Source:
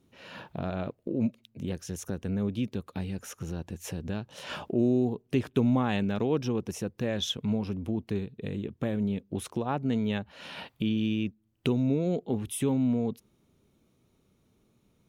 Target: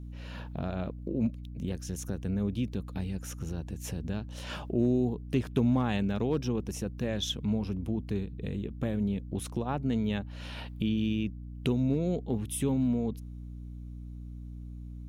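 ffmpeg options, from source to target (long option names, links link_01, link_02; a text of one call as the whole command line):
ffmpeg -i in.wav -af "aeval=exprs='clip(val(0),-1,0.0891)':channel_layout=same,aeval=exprs='val(0)+0.01*(sin(2*PI*60*n/s)+sin(2*PI*2*60*n/s)/2+sin(2*PI*3*60*n/s)/3+sin(2*PI*4*60*n/s)/4+sin(2*PI*5*60*n/s)/5)':channel_layout=same,bass=frequency=250:gain=3,treble=frequency=4000:gain=3,volume=-3dB" out.wav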